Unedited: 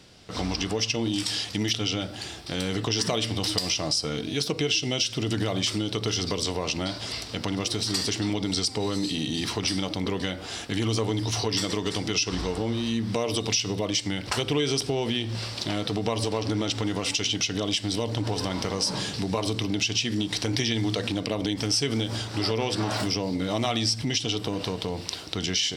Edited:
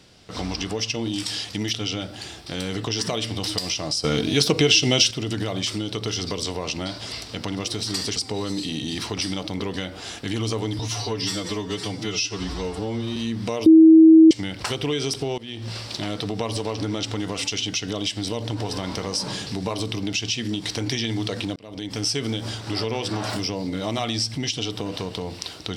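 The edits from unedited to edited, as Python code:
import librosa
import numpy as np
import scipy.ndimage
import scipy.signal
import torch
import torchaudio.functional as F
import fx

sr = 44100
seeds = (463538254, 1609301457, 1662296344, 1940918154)

y = fx.edit(x, sr, fx.clip_gain(start_s=4.04, length_s=1.07, db=8.0),
    fx.cut(start_s=8.16, length_s=0.46),
    fx.stretch_span(start_s=11.25, length_s=1.58, factor=1.5),
    fx.bleep(start_s=13.33, length_s=0.65, hz=321.0, db=-6.5),
    fx.fade_in_from(start_s=15.05, length_s=0.32, floor_db=-21.0),
    fx.fade_in_span(start_s=21.23, length_s=0.46), tone=tone)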